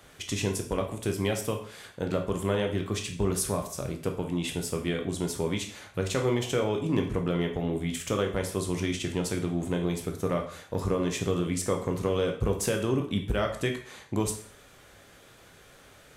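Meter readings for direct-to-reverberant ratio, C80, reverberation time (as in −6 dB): 3.0 dB, 12.5 dB, 0.55 s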